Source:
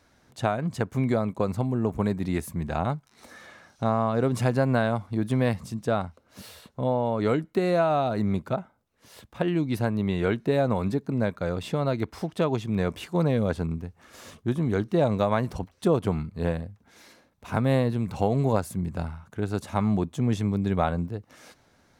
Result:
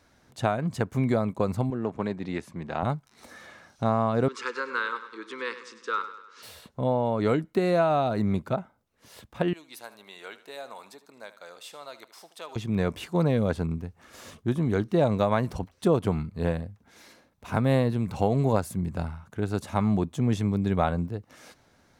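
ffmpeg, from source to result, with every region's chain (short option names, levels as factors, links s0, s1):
-filter_complex "[0:a]asettb=1/sr,asplit=3[s0][s1][s2];[s0]atrim=end=1.704[s3];[s1]atrim=start=1.7:end=2.83,asetpts=PTS-STARTPTS,afade=t=in:d=0.004:c=qsin,afade=t=out:st=1.126:d=0.004:c=qsin,aeval=exprs='if(lt(val(0),0),0.708*val(0),val(0))':c=same,highpass=110,lowpass=4900,lowshelf=f=220:g=-7[s4];[s2]atrim=start=2.826[s5];[s3][s4]acrossfade=d=0.004:c1=hsin:c2=qsin[s6];[s6][s5]acrossfade=d=0.004:c1=qsin:c2=hsin,asettb=1/sr,asplit=3[s7][s8][s9];[s7]atrim=end=4.284[s10];[s8]atrim=start=4.28:end=6.43,asetpts=PTS-STARTPTS,afade=t=in:d=0.004:c=qsin,afade=t=out:st=2.146:d=0.004:c=qsin,asuperstop=centerf=680:order=12:qfactor=2.3,highpass=f=450:w=0.5412,highpass=f=450:w=1.3066,equalizer=f=550:t=q:w=4:g=-9,equalizer=f=830:t=q:w=4:g=-9,equalizer=f=1300:t=q:w=4:g=9,lowpass=f=6500:w=0.5412,lowpass=f=6500:w=1.3066,aecho=1:1:100|200|300|400|500:0.237|0.119|0.0593|0.0296|0.0148,atrim=end_sample=94815[s11];[s9]atrim=start=6.426[s12];[s10][s11]acrossfade=d=0.004:c1=hsin:c2=qsin[s13];[s13][s12]acrossfade=d=0.004:c1=qsin:c2=hsin,asettb=1/sr,asplit=3[s14][s15][s16];[s14]atrim=end=9.534[s17];[s15]atrim=start=9.53:end=12.56,asetpts=PTS-STARTPTS,afade=t=in:d=0.004:c=qsin,afade=t=out:st=3.026:d=0.004:c=qsin,highpass=1300,equalizer=f=1900:t=o:w=1.9:g=-9,aecho=1:1:76|152|228|304:0.178|0.08|0.036|0.0162,atrim=end_sample=133623[s18];[s16]atrim=start=12.556[s19];[s17][s18]acrossfade=d=0.004:c1=hsin:c2=qsin[s20];[s20][s19]acrossfade=d=0.004:c1=qsin:c2=hsin"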